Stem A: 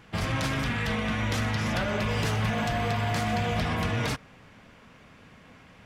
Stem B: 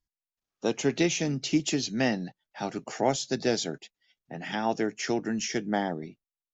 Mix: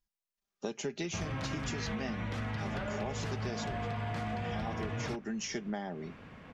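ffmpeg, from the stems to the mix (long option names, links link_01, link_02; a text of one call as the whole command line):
ffmpeg -i stem1.wav -i stem2.wav -filter_complex "[0:a]aemphasis=mode=reproduction:type=75kf,adelay=1000,volume=2dB[link_01];[1:a]aecho=1:1:5:0.53,volume=-2dB[link_02];[link_01][link_02]amix=inputs=2:normalize=0,acompressor=threshold=-34dB:ratio=6" out.wav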